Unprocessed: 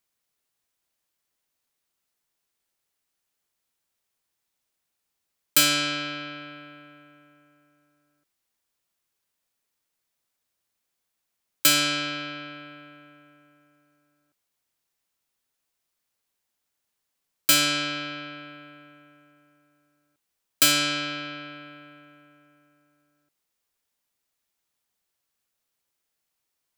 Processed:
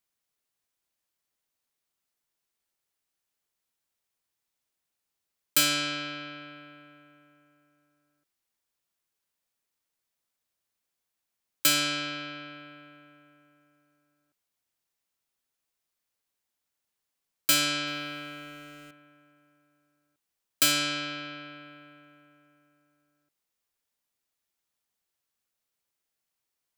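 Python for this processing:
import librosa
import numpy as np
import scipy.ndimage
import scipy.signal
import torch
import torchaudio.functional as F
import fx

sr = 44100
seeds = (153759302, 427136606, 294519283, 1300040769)

y = fx.zero_step(x, sr, step_db=-44.5, at=(17.87, 18.91))
y = y * 10.0 ** (-4.0 / 20.0)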